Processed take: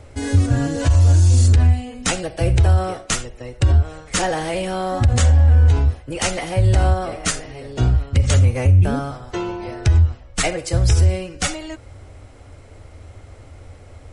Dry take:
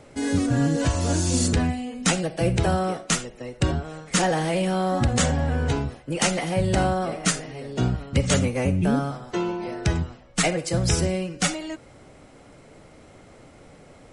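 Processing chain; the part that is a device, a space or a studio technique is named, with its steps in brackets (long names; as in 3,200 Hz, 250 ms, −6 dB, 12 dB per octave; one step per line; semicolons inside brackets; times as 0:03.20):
car stereo with a boomy subwoofer (low shelf with overshoot 120 Hz +10 dB, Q 3; brickwall limiter −9 dBFS, peak gain reduction 10.5 dB)
level +2 dB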